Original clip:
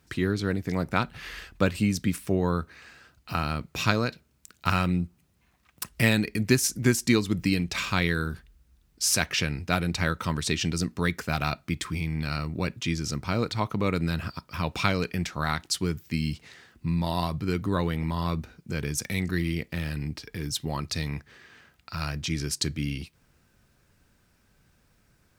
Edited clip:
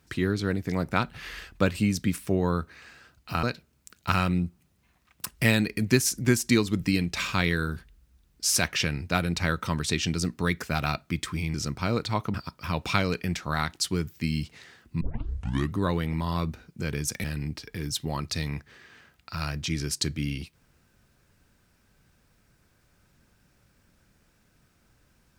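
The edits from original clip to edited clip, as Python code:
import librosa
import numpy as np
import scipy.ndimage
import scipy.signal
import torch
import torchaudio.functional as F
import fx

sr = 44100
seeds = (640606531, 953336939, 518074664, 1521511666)

y = fx.edit(x, sr, fx.cut(start_s=3.43, length_s=0.58),
    fx.cut(start_s=12.12, length_s=0.88),
    fx.cut(start_s=13.8, length_s=0.44),
    fx.tape_start(start_s=16.91, length_s=0.76),
    fx.cut(start_s=19.14, length_s=0.7), tone=tone)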